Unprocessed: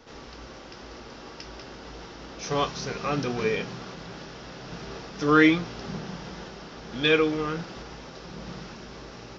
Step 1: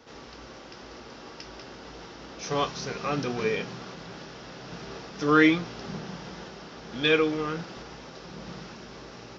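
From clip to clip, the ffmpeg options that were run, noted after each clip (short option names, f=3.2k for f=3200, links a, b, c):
-af "highpass=f=81:p=1,volume=-1dB"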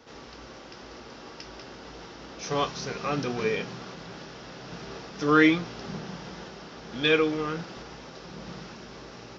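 -af anull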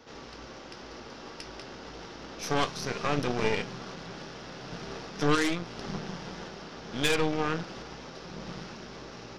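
-af "aeval=exprs='0.422*(cos(1*acos(clip(val(0)/0.422,-1,1)))-cos(1*PI/2))+0.119*(cos(6*acos(clip(val(0)/0.422,-1,1)))-cos(6*PI/2))+0.15*(cos(8*acos(clip(val(0)/0.422,-1,1)))-cos(8*PI/2))':c=same,alimiter=limit=-14.5dB:level=0:latency=1:release=374"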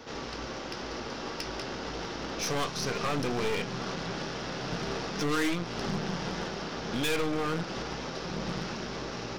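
-filter_complex "[0:a]asplit=2[a][b];[b]acompressor=threshold=-36dB:ratio=6,volume=2dB[c];[a][c]amix=inputs=2:normalize=0,volume=23dB,asoftclip=hard,volume=-23dB"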